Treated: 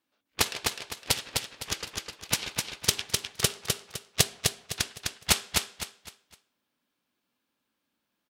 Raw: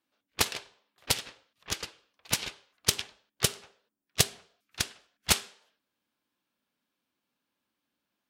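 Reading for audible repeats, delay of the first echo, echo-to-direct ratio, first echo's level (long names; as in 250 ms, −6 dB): 4, 255 ms, −3.0 dB, −3.5 dB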